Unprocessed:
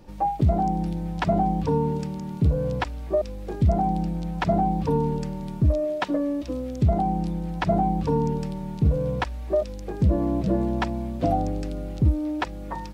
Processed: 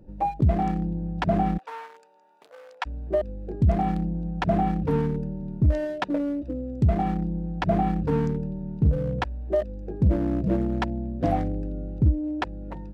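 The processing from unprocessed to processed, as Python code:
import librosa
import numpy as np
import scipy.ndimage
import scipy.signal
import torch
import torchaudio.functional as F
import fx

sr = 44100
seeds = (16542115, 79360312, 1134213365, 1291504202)

y = fx.wiener(x, sr, points=41)
y = fx.highpass(y, sr, hz=780.0, slope=24, at=(1.57, 2.85), fade=0.02)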